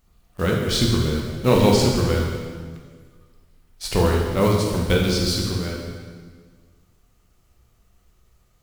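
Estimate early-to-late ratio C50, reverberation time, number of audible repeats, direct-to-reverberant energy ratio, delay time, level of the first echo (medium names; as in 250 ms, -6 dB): 1.5 dB, 1.6 s, no echo, -1.5 dB, no echo, no echo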